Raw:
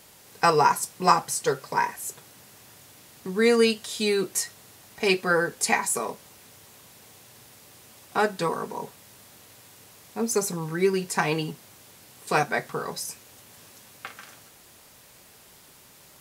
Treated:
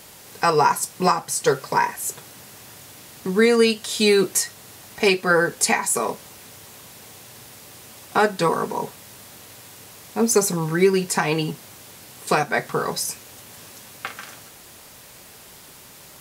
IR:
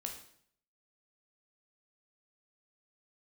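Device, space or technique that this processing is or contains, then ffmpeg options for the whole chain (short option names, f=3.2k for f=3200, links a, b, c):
stacked limiters: -af "alimiter=limit=-10dB:level=0:latency=1:release=446,alimiter=limit=-14dB:level=0:latency=1:release=360,volume=7.5dB"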